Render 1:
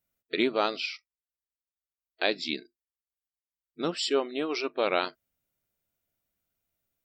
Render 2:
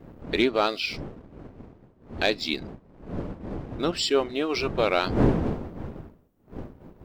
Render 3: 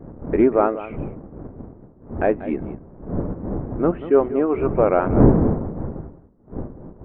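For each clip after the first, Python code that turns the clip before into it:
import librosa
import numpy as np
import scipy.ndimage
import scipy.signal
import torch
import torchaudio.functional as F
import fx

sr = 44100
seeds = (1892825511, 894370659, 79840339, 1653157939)

y1 = fx.dmg_wind(x, sr, seeds[0], corner_hz=310.0, level_db=-36.0)
y1 = fx.leveller(y1, sr, passes=1)
y2 = scipy.ndimage.gaussian_filter1d(y1, 6.3, mode='constant')
y2 = y2 + 10.0 ** (-14.5 / 20.0) * np.pad(y2, (int(189 * sr / 1000.0), 0))[:len(y2)]
y2 = y2 * librosa.db_to_amplitude(8.0)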